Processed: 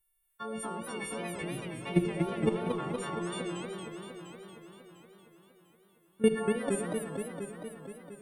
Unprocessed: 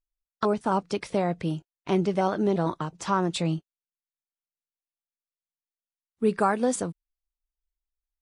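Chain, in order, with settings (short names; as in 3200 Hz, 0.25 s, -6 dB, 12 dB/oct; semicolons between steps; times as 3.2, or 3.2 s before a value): frequency quantiser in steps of 4 st; in parallel at +1 dB: negative-ratio compressor -28 dBFS, ratio -1; on the sum: limiter -12 dBFS, peak gain reduction 4 dB; level quantiser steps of 19 dB; band shelf 5400 Hz -15 dB 1 oct; on a send at -10 dB: reverb RT60 0.70 s, pre-delay 49 ms; on the sum: warbling echo 0.233 s, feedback 73%, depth 204 cents, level -5.5 dB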